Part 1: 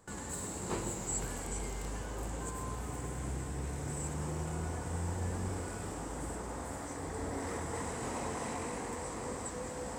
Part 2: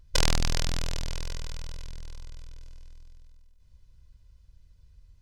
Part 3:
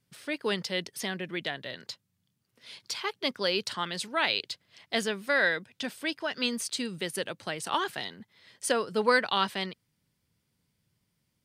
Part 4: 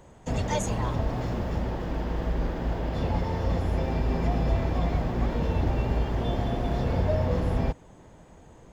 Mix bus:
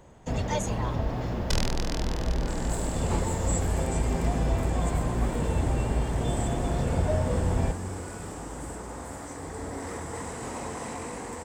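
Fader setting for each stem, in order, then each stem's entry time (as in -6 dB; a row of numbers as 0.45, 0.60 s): +2.5 dB, -5.0 dB, off, -1.0 dB; 2.40 s, 1.35 s, off, 0.00 s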